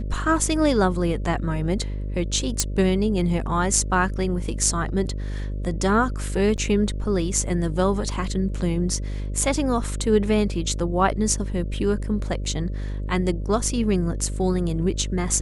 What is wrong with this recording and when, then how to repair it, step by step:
buzz 50 Hz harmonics 12 -28 dBFS
2.60 s: pop -4 dBFS
6.57–6.58 s: dropout 9.6 ms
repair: de-click; de-hum 50 Hz, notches 12; interpolate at 6.57 s, 9.6 ms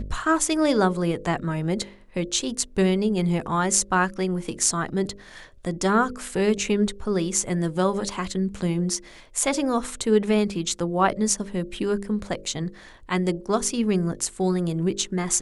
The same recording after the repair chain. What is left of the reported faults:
nothing left

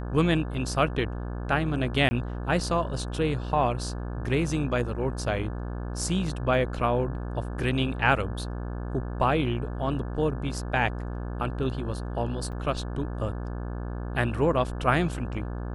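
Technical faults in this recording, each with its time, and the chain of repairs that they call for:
buzz 60 Hz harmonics 29 -33 dBFS
2.09–2.11 s: dropout 20 ms
12.52–12.53 s: dropout 6.8 ms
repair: de-hum 60 Hz, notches 29; interpolate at 2.09 s, 20 ms; interpolate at 12.52 s, 6.8 ms

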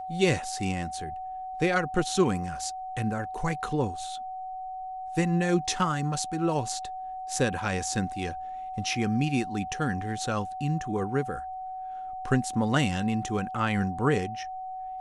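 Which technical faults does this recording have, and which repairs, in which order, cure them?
whine 750 Hz -34 dBFS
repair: band-stop 750 Hz, Q 30

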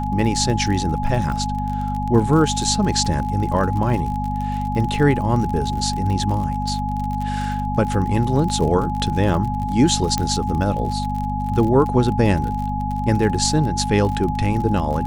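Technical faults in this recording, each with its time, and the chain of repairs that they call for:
crackle 46 per s -26 dBFS
hum 50 Hz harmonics 5 -25 dBFS
whine 840 Hz -25 dBFS
10.18 s: pop -7 dBFS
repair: de-click; de-hum 50 Hz, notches 5; band-stop 840 Hz, Q 30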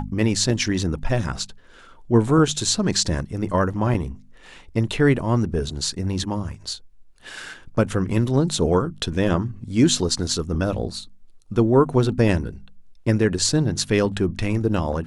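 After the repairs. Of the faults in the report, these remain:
nothing left

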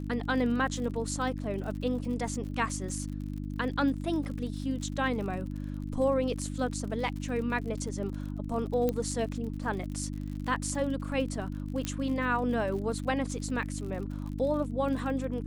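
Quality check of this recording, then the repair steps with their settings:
crackle 56 per s -39 dBFS
hum 50 Hz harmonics 6 -36 dBFS
8.89 s: pop -16 dBFS
11.85 s: pop -17 dBFS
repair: de-click; de-hum 50 Hz, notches 6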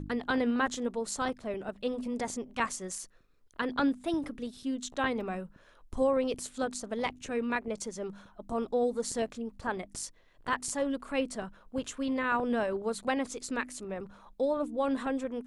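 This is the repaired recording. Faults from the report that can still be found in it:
nothing left

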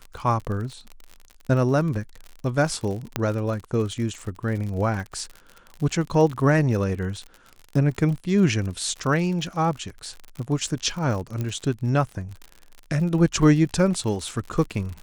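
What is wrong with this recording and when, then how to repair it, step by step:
crackle 58 per s -31 dBFS
3.16 s: pop -8 dBFS
11.41 s: pop -16 dBFS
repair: de-click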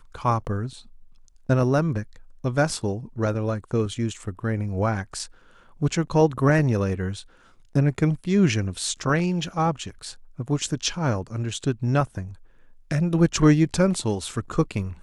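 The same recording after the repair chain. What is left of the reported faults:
3.16 s: pop

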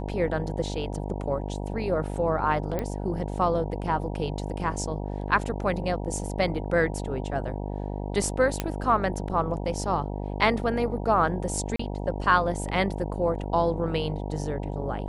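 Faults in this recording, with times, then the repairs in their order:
buzz 50 Hz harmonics 19 -32 dBFS
2.79 s: pop -16 dBFS
8.60 s: pop -11 dBFS
11.76–11.79 s: dropout 34 ms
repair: de-click; de-hum 50 Hz, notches 19; interpolate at 11.76 s, 34 ms

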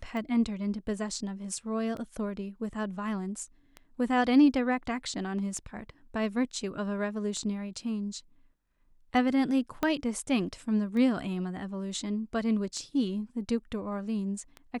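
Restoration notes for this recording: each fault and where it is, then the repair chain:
tick 33 1/3 rpm -27 dBFS
9.83 s: pop -15 dBFS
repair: de-click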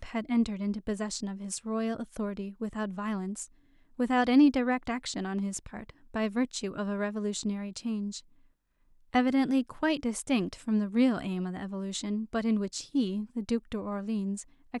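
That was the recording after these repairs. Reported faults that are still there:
9.83 s: pop

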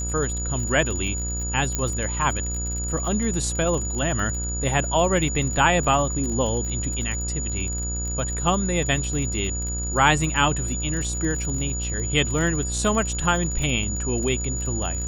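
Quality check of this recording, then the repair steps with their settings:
buzz 60 Hz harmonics 30 -29 dBFS
crackle 32 per s -28 dBFS
whine 6.9 kHz -29 dBFS
1.75 s: pop -10 dBFS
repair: de-click; de-hum 60 Hz, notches 30; band-stop 6.9 kHz, Q 30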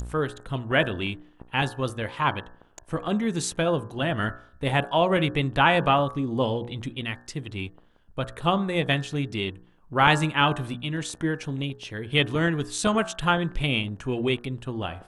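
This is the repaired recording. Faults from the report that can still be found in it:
nothing left

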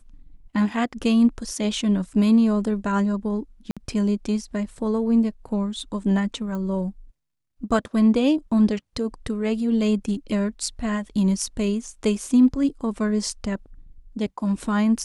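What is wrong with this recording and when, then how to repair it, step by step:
3.71–3.77 s: dropout 56 ms
6.55 s: pop -21 dBFS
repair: de-click; interpolate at 3.71 s, 56 ms

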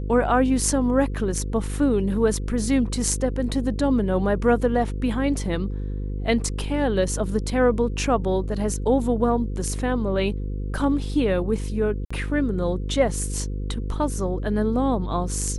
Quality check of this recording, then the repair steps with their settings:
buzz 50 Hz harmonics 10 -28 dBFS
12.05–12.11 s: dropout 55 ms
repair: de-hum 50 Hz, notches 10; interpolate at 12.05 s, 55 ms

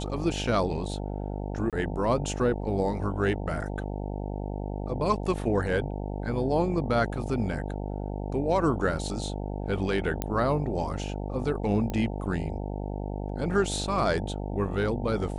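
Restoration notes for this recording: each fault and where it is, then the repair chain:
buzz 50 Hz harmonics 18 -33 dBFS
1.70–1.73 s: dropout 27 ms
10.22 s: pop -13 dBFS
11.90 s: pop -19 dBFS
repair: de-click; de-hum 50 Hz, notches 18; interpolate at 1.70 s, 27 ms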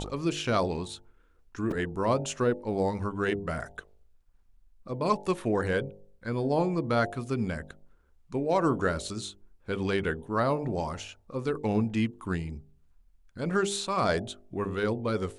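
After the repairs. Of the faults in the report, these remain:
nothing left

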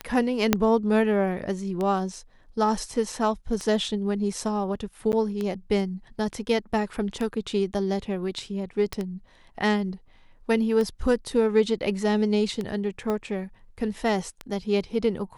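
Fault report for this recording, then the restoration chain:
tick 33 1/3 rpm -17 dBFS
0.53 s: pop -3 dBFS
5.12–5.13 s: dropout 9.5 ms
8.93 s: pop -15 dBFS
13.10 s: pop -16 dBFS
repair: de-click; interpolate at 5.12 s, 9.5 ms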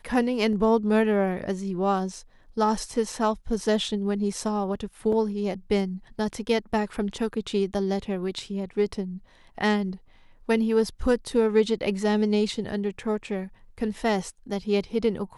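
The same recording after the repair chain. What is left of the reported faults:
0.53 s: pop
13.10 s: pop

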